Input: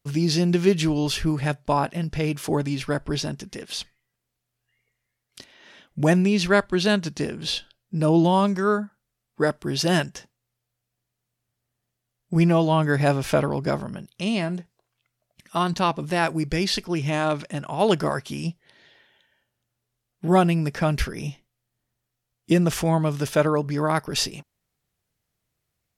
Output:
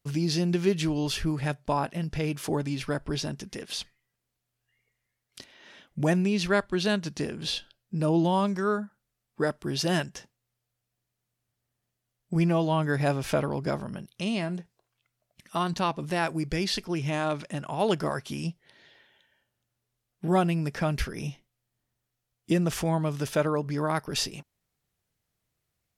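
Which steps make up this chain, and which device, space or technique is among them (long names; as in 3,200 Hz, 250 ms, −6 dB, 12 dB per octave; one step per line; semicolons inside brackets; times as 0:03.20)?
parallel compression (in parallel at −2 dB: downward compressor, threshold −29 dBFS, peak gain reduction 15.5 dB)
on the sum: level −7 dB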